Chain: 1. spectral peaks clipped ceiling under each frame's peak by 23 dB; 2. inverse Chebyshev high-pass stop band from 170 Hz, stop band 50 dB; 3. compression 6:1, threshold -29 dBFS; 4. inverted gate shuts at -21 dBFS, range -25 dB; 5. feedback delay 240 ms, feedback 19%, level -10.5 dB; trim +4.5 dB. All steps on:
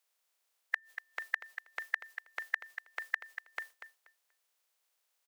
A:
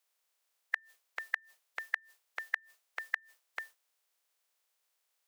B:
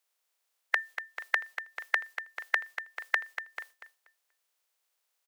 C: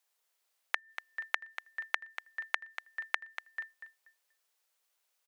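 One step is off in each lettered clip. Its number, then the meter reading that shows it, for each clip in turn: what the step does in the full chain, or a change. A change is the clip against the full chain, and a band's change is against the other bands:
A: 5, momentary loudness spread change +1 LU; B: 4, momentary loudness spread change +2 LU; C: 1, 4 kHz band +4.5 dB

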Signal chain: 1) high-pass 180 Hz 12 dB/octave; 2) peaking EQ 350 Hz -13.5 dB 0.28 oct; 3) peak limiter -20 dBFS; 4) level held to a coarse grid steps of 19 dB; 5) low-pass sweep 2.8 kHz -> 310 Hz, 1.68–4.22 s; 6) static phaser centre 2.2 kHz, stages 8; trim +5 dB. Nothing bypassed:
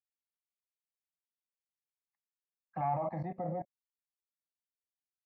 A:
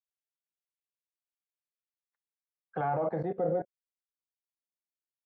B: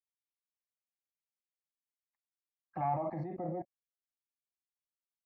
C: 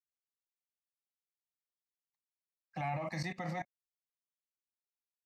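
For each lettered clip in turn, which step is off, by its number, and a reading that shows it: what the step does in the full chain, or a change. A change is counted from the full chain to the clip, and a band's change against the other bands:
6, 2 kHz band +6.5 dB; 2, 250 Hz band +2.0 dB; 5, 2 kHz band +16.0 dB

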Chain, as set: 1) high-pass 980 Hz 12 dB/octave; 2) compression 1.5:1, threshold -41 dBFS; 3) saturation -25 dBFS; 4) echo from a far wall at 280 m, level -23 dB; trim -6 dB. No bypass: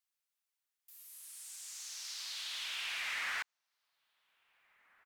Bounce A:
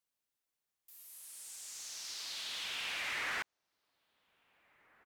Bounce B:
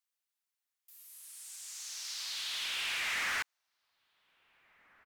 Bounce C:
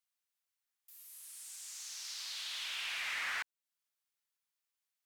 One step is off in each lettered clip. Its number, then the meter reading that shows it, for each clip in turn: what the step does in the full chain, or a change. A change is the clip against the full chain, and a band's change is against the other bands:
1, 500 Hz band +8.5 dB; 2, mean gain reduction 3.5 dB; 4, echo-to-direct -28.0 dB to none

